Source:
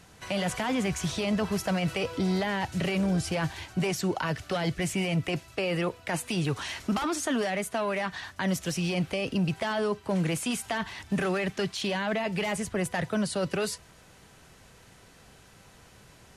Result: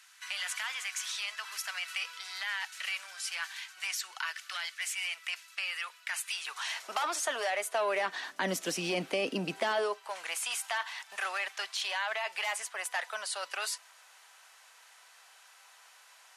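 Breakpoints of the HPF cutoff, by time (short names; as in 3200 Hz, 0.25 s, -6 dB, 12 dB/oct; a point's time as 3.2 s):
HPF 24 dB/oct
6.33 s 1300 Hz
6.92 s 560 Hz
7.57 s 560 Hz
8.34 s 250 Hz
9.61 s 250 Hz
10.12 s 810 Hz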